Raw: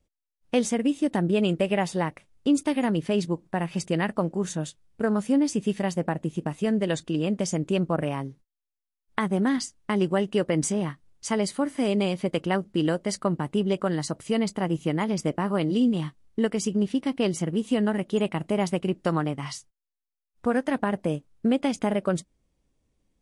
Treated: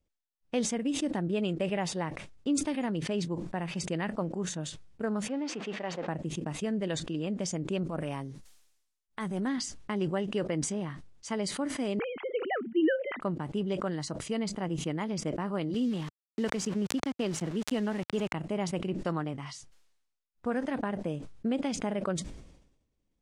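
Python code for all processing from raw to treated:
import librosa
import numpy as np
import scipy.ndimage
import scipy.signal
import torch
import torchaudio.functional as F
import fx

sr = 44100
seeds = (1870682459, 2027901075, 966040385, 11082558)

y = fx.chain(x, sr, fx.zero_step(step_db=-35.0),
    fx.bandpass_edges(low_hz=370.0, high_hz=2900.0), at=(5.28, 6.08))
y = fx.chain(y, sr, fx.high_shelf(hz=5800.0, db=12.0),
    fx.transient(attack_db=-7, sustain_db=5), at=(7.83, 9.47))
y = fx.chain(y, sr, fx.sine_speech(),
    fx.lowpass(hz=2700.0, slope=24),
    fx.peak_eq(hz=1300.0, db=8.0, octaves=2.1), at=(11.99, 13.21))
y = fx.chain(y, sr, fx.sample_gate(floor_db=-35.0),
    fx.band_squash(depth_pct=40), at=(15.74, 18.34))
y = scipy.signal.sosfilt(scipy.signal.butter(2, 7700.0, 'lowpass', fs=sr, output='sos'), y)
y = fx.sustainer(y, sr, db_per_s=64.0)
y = y * librosa.db_to_amplitude(-7.5)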